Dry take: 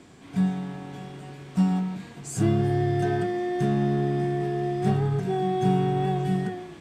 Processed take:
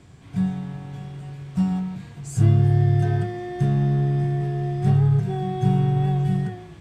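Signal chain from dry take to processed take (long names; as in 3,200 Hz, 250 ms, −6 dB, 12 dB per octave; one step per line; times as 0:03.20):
low shelf with overshoot 170 Hz +10.5 dB, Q 1.5
level −2.5 dB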